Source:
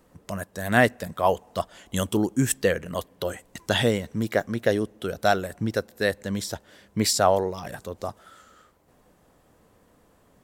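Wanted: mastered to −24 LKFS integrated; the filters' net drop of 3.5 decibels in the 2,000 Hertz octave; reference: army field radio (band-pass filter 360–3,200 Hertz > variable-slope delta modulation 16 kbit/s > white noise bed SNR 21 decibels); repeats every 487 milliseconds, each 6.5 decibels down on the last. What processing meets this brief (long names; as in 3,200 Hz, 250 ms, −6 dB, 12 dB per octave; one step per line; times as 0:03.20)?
band-pass filter 360–3,200 Hz
parametric band 2,000 Hz −4 dB
repeating echo 487 ms, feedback 47%, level −6.5 dB
variable-slope delta modulation 16 kbit/s
white noise bed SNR 21 dB
level +6 dB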